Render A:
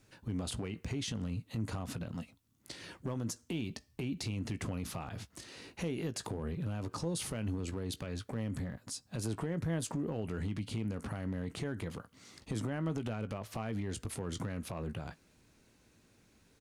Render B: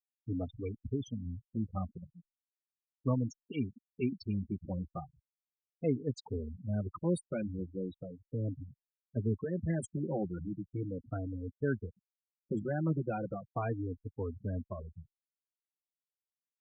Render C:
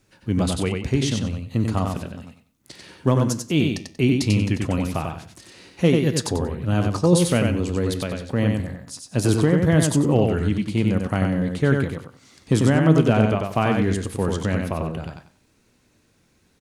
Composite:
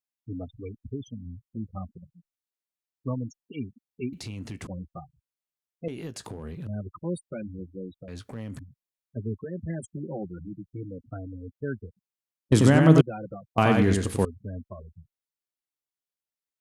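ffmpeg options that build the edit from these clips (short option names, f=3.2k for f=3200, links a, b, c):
-filter_complex "[0:a]asplit=3[a][b][c];[2:a]asplit=2[d][e];[1:a]asplit=6[f][g][h][i][j][k];[f]atrim=end=4.132[l];[a]atrim=start=4.128:end=4.672[m];[g]atrim=start=4.668:end=5.882[n];[b]atrim=start=5.878:end=6.672[o];[h]atrim=start=6.668:end=8.082[p];[c]atrim=start=8.078:end=8.592[q];[i]atrim=start=8.588:end=12.522[r];[d]atrim=start=12.518:end=13.012[s];[j]atrim=start=13.008:end=13.582[t];[e]atrim=start=13.578:end=14.252[u];[k]atrim=start=14.248[v];[l][m]acrossfade=d=0.004:c1=hsin:c2=hsin[w];[w][n]acrossfade=d=0.004:c1=hsin:c2=hsin[x];[x][o]acrossfade=d=0.004:c1=hsin:c2=hsin[y];[y][p]acrossfade=d=0.004:c1=hsin:c2=hsin[z];[z][q]acrossfade=d=0.004:c1=hsin:c2=hsin[aa];[aa][r]acrossfade=d=0.004:c1=hsin:c2=hsin[ab];[ab][s]acrossfade=d=0.004:c1=hsin:c2=hsin[ac];[ac][t]acrossfade=d=0.004:c1=hsin:c2=hsin[ad];[ad][u]acrossfade=d=0.004:c1=hsin:c2=hsin[ae];[ae][v]acrossfade=d=0.004:c1=hsin:c2=hsin"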